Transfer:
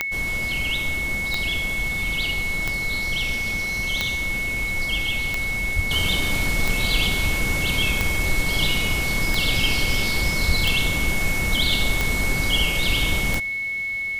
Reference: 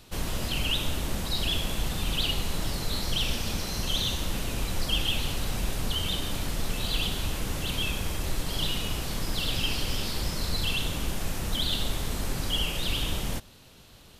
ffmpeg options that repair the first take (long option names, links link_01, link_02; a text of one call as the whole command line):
ffmpeg -i in.wav -filter_complex "[0:a]adeclick=threshold=4,bandreject=frequency=2200:width=30,asplit=3[link_01][link_02][link_03];[link_01]afade=type=out:start_time=5.75:duration=0.02[link_04];[link_02]highpass=frequency=140:width=0.5412,highpass=frequency=140:width=1.3066,afade=type=in:start_time=5.75:duration=0.02,afade=type=out:start_time=5.87:duration=0.02[link_05];[link_03]afade=type=in:start_time=5.87:duration=0.02[link_06];[link_04][link_05][link_06]amix=inputs=3:normalize=0,asplit=3[link_07][link_08][link_09];[link_07]afade=type=out:start_time=10.47:duration=0.02[link_10];[link_08]highpass=frequency=140:width=0.5412,highpass=frequency=140:width=1.3066,afade=type=in:start_time=10.47:duration=0.02,afade=type=out:start_time=10.59:duration=0.02[link_11];[link_09]afade=type=in:start_time=10.59:duration=0.02[link_12];[link_10][link_11][link_12]amix=inputs=3:normalize=0,asetnsamples=nb_out_samples=441:pad=0,asendcmd='5.91 volume volume -6.5dB',volume=0dB" out.wav